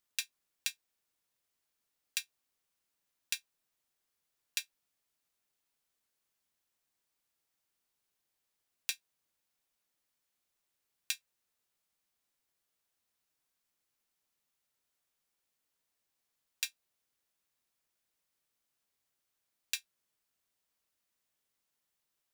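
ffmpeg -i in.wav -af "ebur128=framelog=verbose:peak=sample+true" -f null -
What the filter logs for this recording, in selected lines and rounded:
Integrated loudness:
  I:         -39.9 LUFS
  Threshold: -50.2 LUFS
Loudness range:
  LRA:         4.8 LU
  Threshold: -67.2 LUFS
  LRA low:   -48.4 LUFS
  LRA high:  -43.6 LUFS
Sample peak:
  Peak:      -10.4 dBFS
True peak:
  Peak:      -10.3 dBFS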